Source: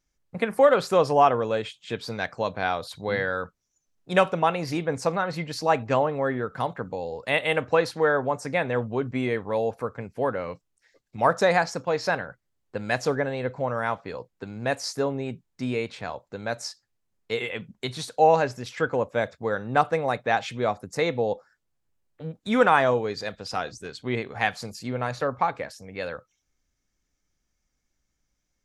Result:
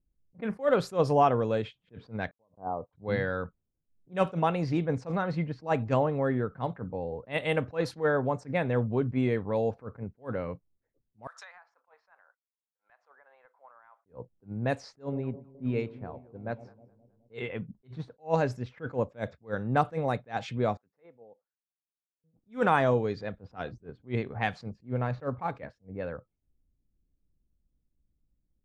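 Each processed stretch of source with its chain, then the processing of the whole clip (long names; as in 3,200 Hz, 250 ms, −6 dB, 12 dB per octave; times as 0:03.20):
0:02.31–0:02.93: noise gate −40 dBFS, range −52 dB + Butterworth low-pass 1,100 Hz 48 dB per octave + low-shelf EQ 140 Hz −11.5 dB
0:11.27–0:14.06: high-pass filter 1,100 Hz 24 dB per octave + downward compressor 16 to 1, threshold −36 dBFS
0:15.02–0:17.34: delay that swaps between a low-pass and a high-pass 105 ms, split 830 Hz, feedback 81%, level −11 dB + expander for the loud parts, over −47 dBFS
0:20.77–0:22.24: low-pass filter 3,300 Hz 24 dB per octave + first difference
0:24.86–0:25.52: one scale factor per block 7 bits + high-shelf EQ 6,300 Hz −11.5 dB
whole clip: low-pass that shuts in the quiet parts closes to 470 Hz, open at −20 dBFS; low-shelf EQ 380 Hz +11.5 dB; level that may rise only so fast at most 290 dB per second; level −7 dB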